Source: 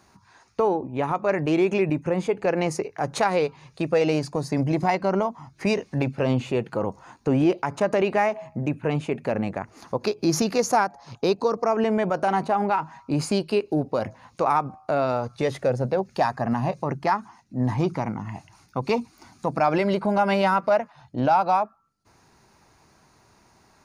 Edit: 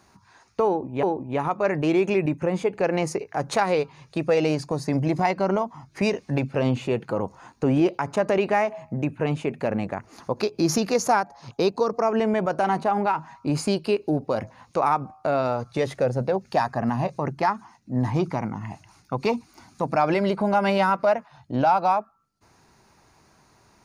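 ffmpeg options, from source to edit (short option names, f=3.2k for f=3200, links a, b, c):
-filter_complex "[0:a]asplit=2[a][b];[a]atrim=end=1.032[c];[b]atrim=start=0.668[d];[c][d]acrossfade=d=0.004:c1=hsin:c2=hsin"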